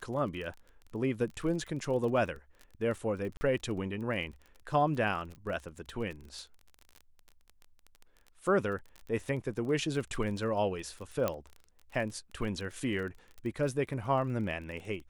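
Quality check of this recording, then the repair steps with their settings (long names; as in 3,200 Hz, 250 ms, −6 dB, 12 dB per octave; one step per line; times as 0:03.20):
surface crackle 24 per second −39 dBFS
0:03.37–0:03.41: drop-out 40 ms
0:11.28: click −16 dBFS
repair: click removal
repair the gap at 0:03.37, 40 ms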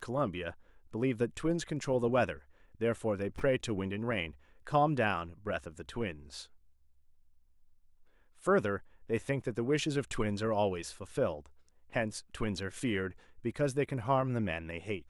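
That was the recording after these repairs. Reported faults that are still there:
none of them is left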